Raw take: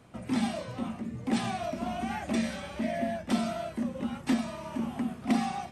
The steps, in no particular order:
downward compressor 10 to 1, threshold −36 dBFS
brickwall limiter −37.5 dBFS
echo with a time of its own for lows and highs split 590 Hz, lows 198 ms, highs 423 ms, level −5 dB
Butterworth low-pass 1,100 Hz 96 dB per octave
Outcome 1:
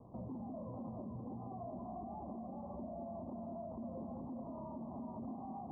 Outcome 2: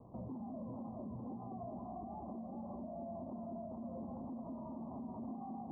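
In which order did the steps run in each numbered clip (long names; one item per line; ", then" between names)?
downward compressor, then echo with a time of its own for lows and highs, then brickwall limiter, then Butterworth low-pass
echo with a time of its own for lows and highs, then downward compressor, then brickwall limiter, then Butterworth low-pass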